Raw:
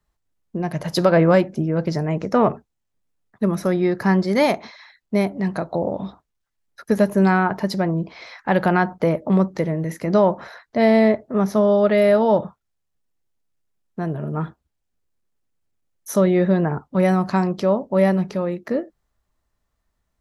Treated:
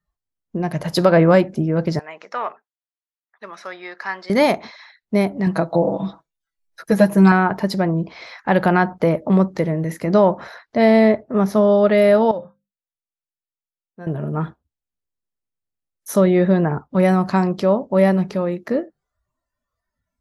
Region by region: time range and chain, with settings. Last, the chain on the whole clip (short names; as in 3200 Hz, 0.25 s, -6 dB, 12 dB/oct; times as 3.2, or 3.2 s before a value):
1.99–4.3 HPF 1200 Hz + air absorption 120 m
5.46–7.32 bell 82 Hz -7 dB 0.79 oct + comb 6.1 ms, depth 85%
12.31–14.07 notches 50/100/150/200/250 Hz + resonator 530 Hz, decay 0.22 s, harmonics odd, mix 80%
whole clip: dynamic EQ 6000 Hz, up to -4 dB, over -56 dBFS, Q 6.3; spectral noise reduction 14 dB; gain +2 dB